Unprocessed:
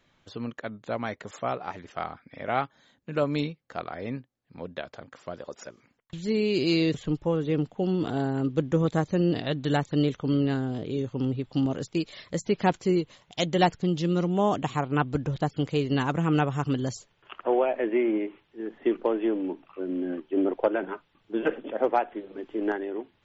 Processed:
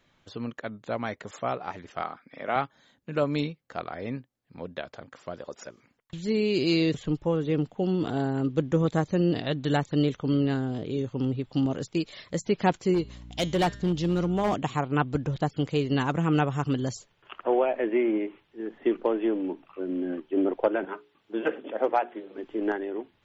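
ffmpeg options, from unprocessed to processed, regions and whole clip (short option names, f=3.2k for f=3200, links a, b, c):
-filter_complex "[0:a]asettb=1/sr,asplit=3[a][b][c];[a]atrim=end=2.024[d];[b]atrim=start=2.02:end=2.56,asetpts=PTS-STARTPTS,afade=t=in:d=0.004:c=qsin,afade=t=out:st=0.536:d=0.004:c=qsin,highpass=200,equalizer=f=1.2k:t=o:w=0.32:g=3.5[e];[c]atrim=start=2.556[f];[d][e]acrossfade=d=0.004:c1=hsin:c2=qsin[g];[g][f]acrossfade=d=0.004:c1=qsin:c2=hsin,asettb=1/sr,asplit=3[h][i][j];[h]atrim=end=12.944[k];[i]atrim=start=12.94:end=14.54,asetpts=PTS-STARTPTS,afade=t=in:d=0.004:c=qsin,afade=t=out:st=1.596:d=0.004:c=qsin,bandreject=f=201.4:t=h:w=4,bandreject=f=402.8:t=h:w=4,bandreject=f=604.2:t=h:w=4,bandreject=f=805.6:t=h:w=4,bandreject=f=1.007k:t=h:w=4,bandreject=f=1.2084k:t=h:w=4,bandreject=f=1.4098k:t=h:w=4,bandreject=f=1.6112k:t=h:w=4,bandreject=f=1.8126k:t=h:w=4,bandreject=f=2.014k:t=h:w=4,bandreject=f=2.2154k:t=h:w=4,bandreject=f=2.4168k:t=h:w=4,bandreject=f=2.6182k:t=h:w=4,bandreject=f=2.8196k:t=h:w=4,bandreject=f=3.021k:t=h:w=4,bandreject=f=3.2224k:t=h:w=4,bandreject=f=3.4238k:t=h:w=4,bandreject=f=3.6252k:t=h:w=4,bandreject=f=3.8266k:t=h:w=4,bandreject=f=4.028k:t=h:w=4,bandreject=f=4.2294k:t=h:w=4,bandreject=f=4.4308k:t=h:w=4,bandreject=f=4.6322k:t=h:w=4,bandreject=f=4.8336k:t=h:w=4,bandreject=f=5.035k:t=h:w=4,bandreject=f=5.2364k:t=h:w=4,bandreject=f=5.4378k:t=h:w=4,bandreject=f=5.6392k:t=h:w=4,bandreject=f=5.8406k:t=h:w=4,bandreject=f=6.042k:t=h:w=4,bandreject=f=6.2434k:t=h:w=4,bandreject=f=6.4448k:t=h:w=4,bandreject=f=6.6462k:t=h:w=4,bandreject=f=6.8476k:t=h:w=4,bandreject=f=7.049k:t=h:w=4,bandreject=f=7.2504k:t=h:w=4,bandreject=f=7.4518k:t=h:w=4,bandreject=f=7.6532k:t=h:w=4,aeval=exprs='val(0)+0.00708*(sin(2*PI*60*n/s)+sin(2*PI*2*60*n/s)/2+sin(2*PI*3*60*n/s)/3+sin(2*PI*4*60*n/s)/4+sin(2*PI*5*60*n/s)/5)':c=same,volume=19.5dB,asoftclip=hard,volume=-19.5dB[l];[j]atrim=start=14.536[m];[k][l]acrossfade=d=0.004:c1=hsin:c2=qsin[n];[n][m]acrossfade=d=0.004:c1=qsin:c2=hsin,asettb=1/sr,asplit=3[o][p][q];[o]atrim=end=20.854[r];[p]atrim=start=20.85:end=22.38,asetpts=PTS-STARTPTS,afade=t=in:d=0.004:c=qsin,afade=t=out:st=1.526:d=0.004:c=qsin,highpass=f=230:p=1,bandreject=f=60:t=h:w=6,bandreject=f=120:t=h:w=6,bandreject=f=180:t=h:w=6,bandreject=f=240:t=h:w=6,bandreject=f=300:t=h:w=6,bandreject=f=360:t=h:w=6,bandreject=f=420:t=h:w=6[s];[q]atrim=start=22.376[t];[r][s]acrossfade=d=0.004:c1=hsin:c2=qsin[u];[u][t]acrossfade=d=0.004:c1=qsin:c2=hsin"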